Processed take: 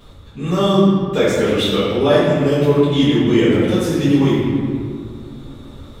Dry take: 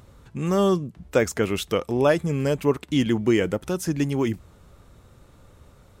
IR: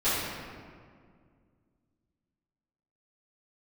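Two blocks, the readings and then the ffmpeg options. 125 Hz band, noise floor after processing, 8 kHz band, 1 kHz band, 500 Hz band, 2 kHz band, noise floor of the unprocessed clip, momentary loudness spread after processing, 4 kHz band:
+8.5 dB, -39 dBFS, +1.5 dB, +7.0 dB, +7.5 dB, +5.5 dB, -53 dBFS, 14 LU, +11.5 dB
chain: -filter_complex "[0:a]equalizer=f=3.6k:w=4.3:g=12.5[a];[1:a]atrim=start_sample=2205[b];[a][b]afir=irnorm=-1:irlink=0,dynaudnorm=f=200:g=13:m=11.5dB,volume=-1dB"

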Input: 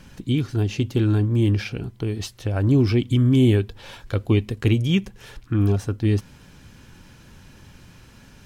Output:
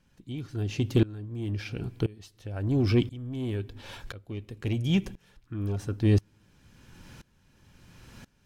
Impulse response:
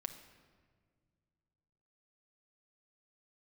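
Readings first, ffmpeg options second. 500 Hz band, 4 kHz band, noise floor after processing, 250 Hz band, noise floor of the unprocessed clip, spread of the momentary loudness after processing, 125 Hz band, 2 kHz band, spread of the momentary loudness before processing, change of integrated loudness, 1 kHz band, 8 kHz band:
-7.0 dB, -7.5 dB, -66 dBFS, -8.0 dB, -49 dBFS, 16 LU, -8.5 dB, -7.5 dB, 11 LU, -8.0 dB, -8.0 dB, n/a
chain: -filter_complex "[0:a]asoftclip=type=tanh:threshold=-12dB,asplit=2[a][b];[1:a]atrim=start_sample=2205,afade=t=out:st=0.43:d=0.01,atrim=end_sample=19404[c];[b][c]afir=irnorm=-1:irlink=0,volume=-12dB[d];[a][d]amix=inputs=2:normalize=0,aeval=exprs='val(0)*pow(10,-23*if(lt(mod(-0.97*n/s,1),2*abs(-0.97)/1000),1-mod(-0.97*n/s,1)/(2*abs(-0.97)/1000),(mod(-0.97*n/s,1)-2*abs(-0.97)/1000)/(1-2*abs(-0.97)/1000))/20)':c=same"

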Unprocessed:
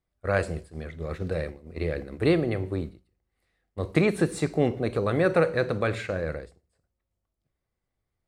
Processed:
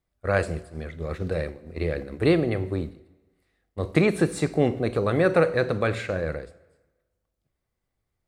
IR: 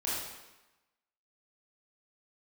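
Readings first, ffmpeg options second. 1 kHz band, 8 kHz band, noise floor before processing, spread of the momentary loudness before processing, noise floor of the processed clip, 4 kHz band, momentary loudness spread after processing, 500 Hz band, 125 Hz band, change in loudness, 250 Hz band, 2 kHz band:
+2.0 dB, +2.0 dB, -83 dBFS, 13 LU, -81 dBFS, +2.0 dB, 13 LU, +2.0 dB, +2.0 dB, +2.0 dB, +2.0 dB, +2.0 dB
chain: -filter_complex "[0:a]asplit=2[a][b];[1:a]atrim=start_sample=2205,asetrate=36603,aresample=44100[c];[b][c]afir=irnorm=-1:irlink=0,volume=-25.5dB[d];[a][d]amix=inputs=2:normalize=0,volume=1.5dB"

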